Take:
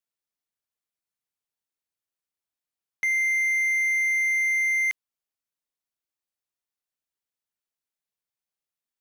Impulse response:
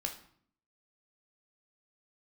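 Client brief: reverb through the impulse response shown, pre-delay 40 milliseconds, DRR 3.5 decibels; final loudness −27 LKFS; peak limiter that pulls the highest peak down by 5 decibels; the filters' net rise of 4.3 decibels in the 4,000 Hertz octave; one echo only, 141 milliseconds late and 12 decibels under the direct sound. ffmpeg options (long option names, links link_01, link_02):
-filter_complex "[0:a]equalizer=frequency=4000:width_type=o:gain=5.5,alimiter=limit=-22.5dB:level=0:latency=1,aecho=1:1:141:0.251,asplit=2[link_01][link_02];[1:a]atrim=start_sample=2205,adelay=40[link_03];[link_02][link_03]afir=irnorm=-1:irlink=0,volume=-4.5dB[link_04];[link_01][link_04]amix=inputs=2:normalize=0,volume=5dB"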